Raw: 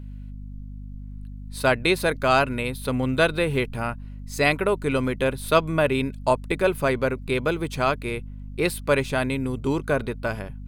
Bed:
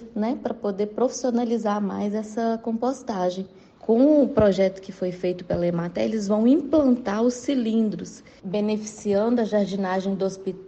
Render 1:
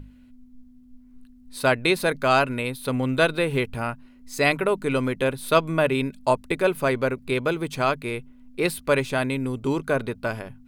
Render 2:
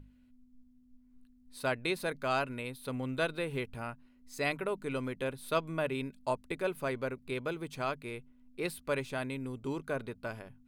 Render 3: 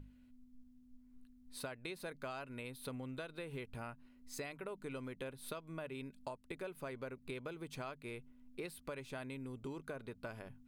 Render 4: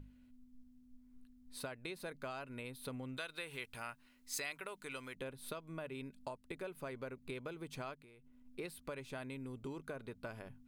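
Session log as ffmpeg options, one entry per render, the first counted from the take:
-af "bandreject=f=50:t=h:w=6,bandreject=f=100:t=h:w=6,bandreject=f=150:t=h:w=6,bandreject=f=200:t=h:w=6"
-af "volume=-12dB"
-af "alimiter=limit=-24dB:level=0:latency=1:release=482,acompressor=threshold=-42dB:ratio=6"
-filter_complex "[0:a]asettb=1/sr,asplit=3[a][b][c];[a]atrim=end=3.174[d];[b]atrim=start=3.17:end=5.15,asetpts=PTS-STARTPTS,afade=t=in:d=0.004:c=qsin,afade=t=out:st=1.976:d=0.004:c=qsin,tiltshelf=f=810:g=-8.5[e];[c]atrim=start=5.146[f];[d][e]acrossfade=d=0.004:c1=hsin:c2=qsin[g];[g][f]acrossfade=d=0.004:c1=qsin:c2=hsin,asplit=3[h][i][j];[h]afade=t=out:st=7.94:d=0.02[k];[i]acompressor=threshold=-58dB:ratio=8:attack=3.2:release=140:knee=1:detection=peak,afade=t=in:st=7.94:d=0.02,afade=t=out:st=8.44:d=0.02[l];[j]afade=t=in:st=8.44:d=0.02[m];[k][l][m]amix=inputs=3:normalize=0"

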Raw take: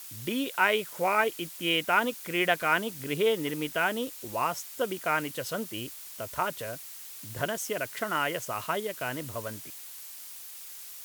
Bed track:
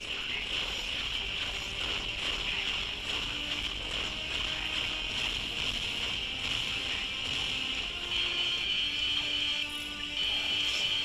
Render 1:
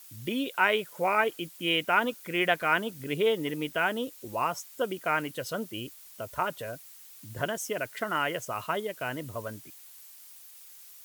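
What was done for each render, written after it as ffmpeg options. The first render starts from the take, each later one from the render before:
-af "afftdn=nr=8:nf=-44"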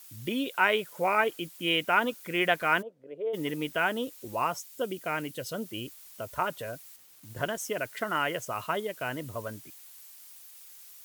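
-filter_complex "[0:a]asplit=3[a][b][c];[a]afade=t=out:st=2.81:d=0.02[d];[b]bandpass=f=550:t=q:w=4.3,afade=t=in:st=2.81:d=0.02,afade=t=out:st=3.33:d=0.02[e];[c]afade=t=in:st=3.33:d=0.02[f];[d][e][f]amix=inputs=3:normalize=0,asettb=1/sr,asplit=3[g][h][i];[g]atrim=end=4.574[j];[h]atrim=start=4.57:end=5.66,asetpts=PTS-STARTPTS,afade=t=in:d=0.004:c=qsin,afade=t=out:st=1.086:d=0.004:c=qsin,equalizer=f=1.2k:w=0.76:g=-6[k];[i]atrim=start=5.656[l];[j][k]acrossfade=d=0.004:c1=hsin:c2=qsin[m];[m][l]acrossfade=d=0.004:c1=qsin:c2=hsin,asettb=1/sr,asplit=3[n][o][p];[n]atrim=end=6.964[q];[o]atrim=start=6.96:end=7.65,asetpts=PTS-STARTPTS,afade=t=in:d=0.004:c=qsin,afade=t=out:st=0.686:d=0.004:c=qsin,aeval=exprs='sgn(val(0))*max(abs(val(0))-0.00224,0)':c=same[r];[p]atrim=start=7.646[s];[q][r]acrossfade=d=0.004:c1=hsin:c2=qsin[t];[t][s]acrossfade=d=0.004:c1=qsin:c2=hsin"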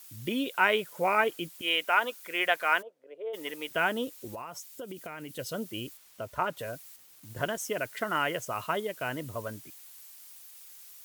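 -filter_complex "[0:a]asettb=1/sr,asplit=3[a][b][c];[a]atrim=end=1.614[d];[b]atrim=start=1.61:end=3.71,asetpts=PTS-STARTPTS,afade=t=in:d=0.004:c=qsin,afade=t=out:st=2.096:d=0.004:c=qsin,highpass=530[e];[c]atrim=start=3.706[f];[d][e]acrossfade=d=0.004:c1=hsin:c2=qsin[g];[g][f]acrossfade=d=0.004:c1=qsin:c2=hsin,asettb=1/sr,asplit=3[h][i][j];[h]atrim=end=4.334[k];[i]atrim=start=4.33:end=5.39,asetpts=PTS-STARTPTS,afade=t=in:d=0.004:c=qsin,afade=t=out:st=1.056:d=0.004:c=qsin,acompressor=threshold=-36dB:ratio=10:attack=3.2:release=140:knee=1:detection=peak[l];[j]atrim=start=5.386[m];[k][l]acrossfade=d=0.004:c1=hsin:c2=qsin[n];[n][m]acrossfade=d=0.004:c1=qsin:c2=hsin,asettb=1/sr,asplit=3[o][p][q];[o]atrim=end=5.974[r];[p]atrim=start=5.97:end=6.57,asetpts=PTS-STARTPTS,afade=t=in:d=0.004:c=qsin,afade=t=out:st=0.596:d=0.004:c=qsin,highshelf=f=5.3k:g=-8.5[s];[q]atrim=start=6.566[t];[r][s]acrossfade=d=0.004:c1=hsin:c2=qsin[u];[u][t]acrossfade=d=0.004:c1=qsin:c2=hsin"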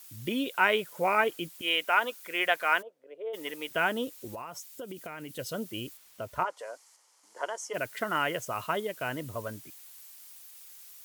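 -filter_complex "[0:a]asplit=3[a][b][c];[a]afade=t=out:st=6.43:d=0.02[d];[b]highpass=f=460:w=0.5412,highpass=f=460:w=1.3066,equalizer=f=640:t=q:w=4:g=-4,equalizer=f=920:t=q:w=4:g=7,equalizer=f=1.6k:t=q:w=4:g=-5,equalizer=f=2.6k:t=q:w=4:g=-9,equalizer=f=3.7k:t=q:w=4:g=-10,equalizer=f=8.2k:t=q:w=4:g=-3,lowpass=f=8.7k:w=0.5412,lowpass=f=8.7k:w=1.3066,afade=t=in:st=6.43:d=0.02,afade=t=out:st=7.73:d=0.02[e];[c]afade=t=in:st=7.73:d=0.02[f];[d][e][f]amix=inputs=3:normalize=0"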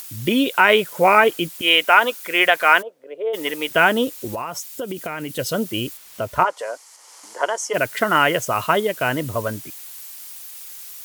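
-af "acompressor=mode=upward:threshold=-47dB:ratio=2.5,alimiter=level_in=12.5dB:limit=-1dB:release=50:level=0:latency=1"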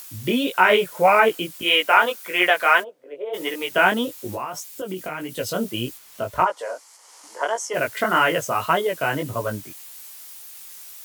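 -filter_complex "[0:a]flanger=delay=16:depth=5.8:speed=1.7,acrossover=split=160|1100|2100[a][b][c][d];[b]crystalizer=i=7:c=0[e];[a][e][c][d]amix=inputs=4:normalize=0"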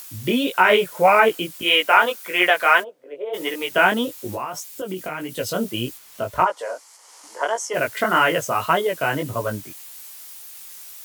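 -af "volume=1dB,alimiter=limit=-2dB:level=0:latency=1"

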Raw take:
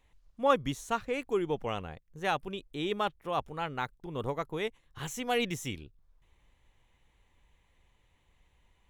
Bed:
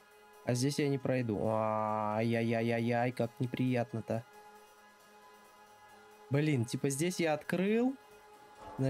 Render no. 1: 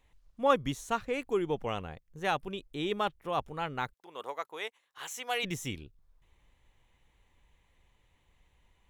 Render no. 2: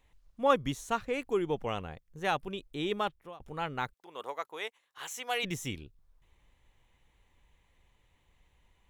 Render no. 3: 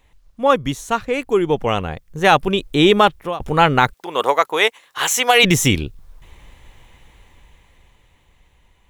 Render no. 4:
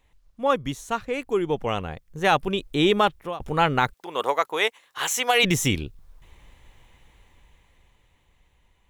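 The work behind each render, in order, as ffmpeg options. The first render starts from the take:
-filter_complex "[0:a]asplit=3[a][b][c];[a]afade=t=out:st=3.92:d=0.02[d];[b]highpass=680,afade=t=in:st=3.92:d=0.02,afade=t=out:st=5.43:d=0.02[e];[c]afade=t=in:st=5.43:d=0.02[f];[d][e][f]amix=inputs=3:normalize=0"
-filter_complex "[0:a]asplit=2[a][b];[a]atrim=end=3.4,asetpts=PTS-STARTPTS,afade=t=out:st=2.88:d=0.52:c=qsin[c];[b]atrim=start=3.4,asetpts=PTS-STARTPTS,afade=t=in:d=0.004:c=hsin[d];[c][d]concat=n=2:v=0:a=1"
-af "dynaudnorm=f=310:g=13:m=12.5dB,alimiter=level_in=10.5dB:limit=-1dB:release=50:level=0:latency=1"
-af "volume=-7dB"

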